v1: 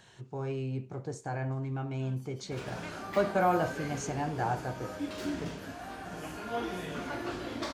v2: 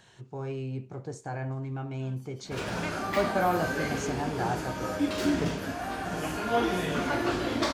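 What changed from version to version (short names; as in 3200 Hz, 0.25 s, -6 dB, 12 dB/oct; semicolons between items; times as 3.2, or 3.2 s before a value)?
background +8.5 dB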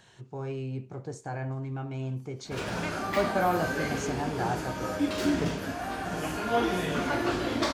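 second voice -7.5 dB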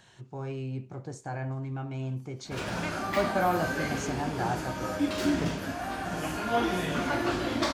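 master: add bell 440 Hz -6 dB 0.21 oct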